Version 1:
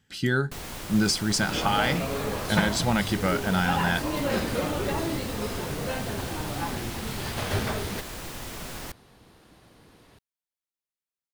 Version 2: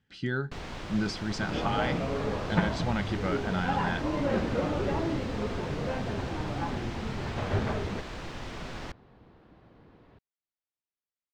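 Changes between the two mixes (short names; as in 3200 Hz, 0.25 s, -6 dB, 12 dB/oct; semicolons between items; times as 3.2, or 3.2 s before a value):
speech -6.0 dB; second sound: add LPF 1400 Hz 6 dB/oct; master: add air absorption 150 m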